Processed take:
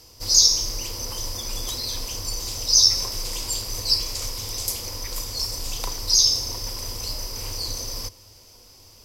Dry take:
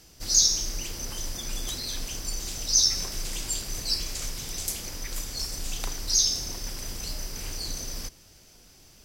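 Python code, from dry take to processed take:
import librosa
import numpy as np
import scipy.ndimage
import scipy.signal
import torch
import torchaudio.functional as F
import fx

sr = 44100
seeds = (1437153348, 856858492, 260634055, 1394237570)

y = fx.graphic_eq_31(x, sr, hz=(100, 160, 500, 1000, 1600, 5000, 12500), db=(11, -12, 8, 10, -5, 8, 6))
y = y * librosa.db_to_amplitude(1.0)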